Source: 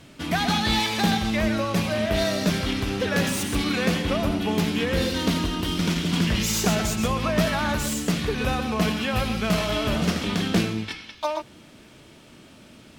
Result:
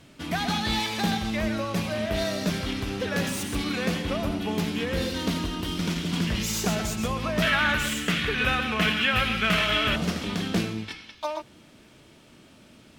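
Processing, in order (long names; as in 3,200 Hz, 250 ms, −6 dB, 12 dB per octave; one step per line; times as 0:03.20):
0:07.42–0:09.96: flat-topped bell 2,100 Hz +11 dB
level −4 dB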